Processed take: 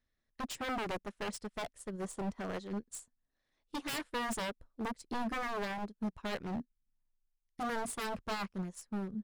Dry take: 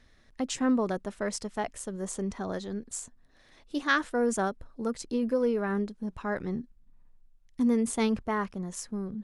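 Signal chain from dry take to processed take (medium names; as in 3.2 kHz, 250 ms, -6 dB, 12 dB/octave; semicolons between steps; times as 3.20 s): wavefolder -30 dBFS; dynamic bell 6.2 kHz, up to -6 dB, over -56 dBFS, Q 4.4; upward expansion 2.5:1, over -49 dBFS; trim +1 dB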